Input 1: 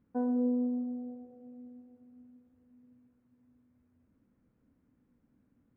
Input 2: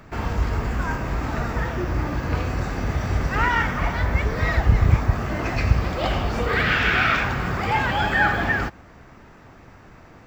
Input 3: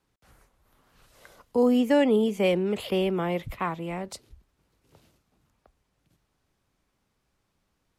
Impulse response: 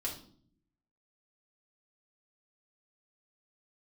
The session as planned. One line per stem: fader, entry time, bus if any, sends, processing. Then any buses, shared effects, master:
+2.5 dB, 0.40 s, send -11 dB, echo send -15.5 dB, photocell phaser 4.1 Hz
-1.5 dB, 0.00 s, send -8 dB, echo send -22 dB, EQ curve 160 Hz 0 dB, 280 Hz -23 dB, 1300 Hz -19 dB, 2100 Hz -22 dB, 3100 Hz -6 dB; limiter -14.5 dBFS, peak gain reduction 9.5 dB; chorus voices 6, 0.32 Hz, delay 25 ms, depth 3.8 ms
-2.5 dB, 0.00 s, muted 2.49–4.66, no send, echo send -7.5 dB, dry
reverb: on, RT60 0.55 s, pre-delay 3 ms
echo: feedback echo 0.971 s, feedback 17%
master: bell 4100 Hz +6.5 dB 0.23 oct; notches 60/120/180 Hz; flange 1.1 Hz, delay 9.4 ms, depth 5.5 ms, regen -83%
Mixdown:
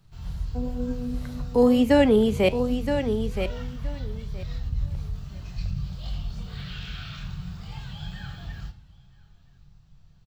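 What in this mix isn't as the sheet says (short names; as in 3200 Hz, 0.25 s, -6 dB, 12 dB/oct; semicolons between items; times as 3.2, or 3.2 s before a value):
stem 3 -2.5 dB -> +7.5 dB; master: missing notches 60/120/180 Hz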